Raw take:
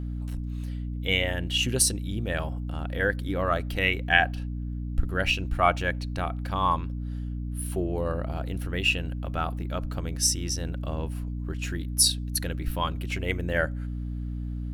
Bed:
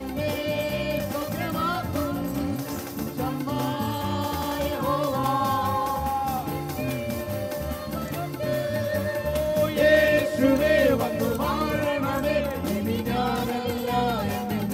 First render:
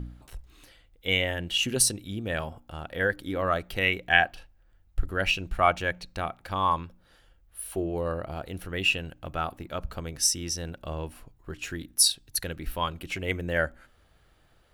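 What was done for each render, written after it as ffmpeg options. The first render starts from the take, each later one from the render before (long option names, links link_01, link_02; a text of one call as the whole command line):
ffmpeg -i in.wav -af "bandreject=frequency=60:width_type=h:width=4,bandreject=frequency=120:width_type=h:width=4,bandreject=frequency=180:width_type=h:width=4,bandreject=frequency=240:width_type=h:width=4,bandreject=frequency=300:width_type=h:width=4" out.wav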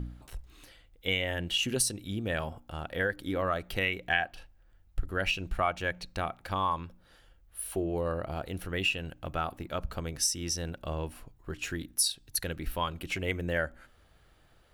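ffmpeg -i in.wav -af "acompressor=threshold=-27dB:ratio=2.5" out.wav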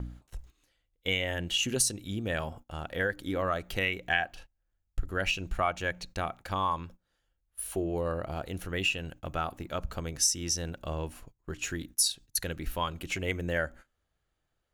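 ffmpeg -i in.wav -af "agate=range=-18dB:threshold=-47dB:ratio=16:detection=peak,equalizer=frequency=6700:width_type=o:width=0.31:gain=7.5" out.wav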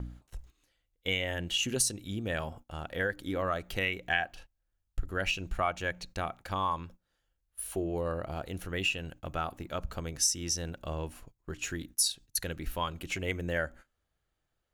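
ffmpeg -i in.wav -af "volume=-1.5dB" out.wav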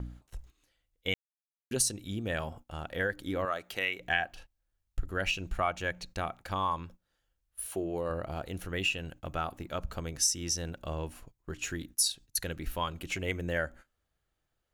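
ffmpeg -i in.wav -filter_complex "[0:a]asettb=1/sr,asplit=3[link_01][link_02][link_03];[link_01]atrim=end=3.454[link_04];[link_02]atrim=start=3.45:end=4,asetpts=PTS-STARTPTS,afade=type=in:duration=0.004:curve=qsin,afade=type=out:start_time=0.546:duration=0.004:curve=qsin,highpass=frequency=490:poles=1[link_05];[link_03]atrim=start=3.996[link_06];[link_04][link_05]acrossfade=duration=0.004:curve1=hsin:curve2=qsin[link_07];[link_07][link_06]acrossfade=duration=0.004:curve1=qsin:curve2=hsin,asettb=1/sr,asplit=3[link_08][link_09][link_10];[link_08]atrim=end=7.654[link_11];[link_09]atrim=start=7.65:end=8.1,asetpts=PTS-STARTPTS,afade=type=in:duration=0.004:curve=qsin,afade=type=out:start_time=0.446:duration=0.004:curve=qsin,highpass=frequency=160:poles=1[link_12];[link_10]atrim=start=8.096[link_13];[link_11][link_12]acrossfade=duration=0.004:curve1=hsin:curve2=qsin[link_14];[link_14][link_13]acrossfade=duration=0.004:curve1=qsin:curve2=hsin,asplit=3[link_15][link_16][link_17];[link_15]atrim=end=1.14,asetpts=PTS-STARTPTS,afade=type=out:start_time=1.136:duration=0.004:curve=hsin[link_18];[link_16]atrim=start=1.14:end=1.71,asetpts=PTS-STARTPTS,volume=0[link_19];[link_17]atrim=start=1.71,asetpts=PTS-STARTPTS,afade=type=in:duration=0.004:curve=hsin[link_20];[link_18][link_19][link_20]concat=n=3:v=0:a=1" out.wav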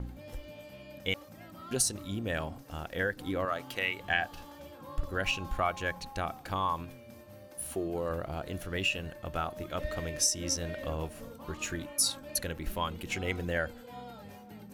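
ffmpeg -i in.wav -i bed.wav -filter_complex "[1:a]volume=-21.5dB[link_01];[0:a][link_01]amix=inputs=2:normalize=0" out.wav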